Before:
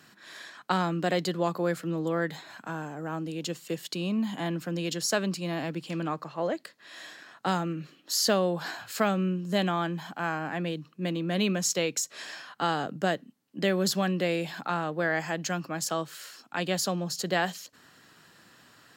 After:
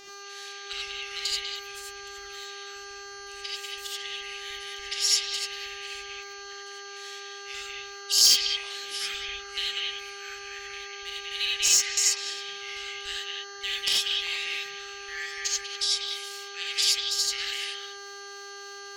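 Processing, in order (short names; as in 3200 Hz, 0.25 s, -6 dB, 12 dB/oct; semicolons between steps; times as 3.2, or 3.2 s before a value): trilling pitch shifter -6 st, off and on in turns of 0.145 s; inverse Chebyshev band-stop 130–980 Hz, stop band 50 dB; high shelf 12000 Hz -5.5 dB; wrapped overs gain 17 dB; dynamic EQ 5100 Hz, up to +6 dB, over -47 dBFS, Q 0.87; buzz 400 Hz, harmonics 17, -49 dBFS -2 dB/oct; delay with a stepping band-pass 0.194 s, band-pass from 2600 Hz, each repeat -1.4 oct, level 0 dB; non-linear reverb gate 0.11 s rising, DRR -3.5 dB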